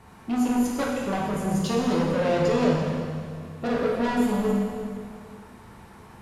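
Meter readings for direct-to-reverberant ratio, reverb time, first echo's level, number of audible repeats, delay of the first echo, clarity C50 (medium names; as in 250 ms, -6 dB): -3.5 dB, 2.1 s, no echo, no echo, no echo, 0.0 dB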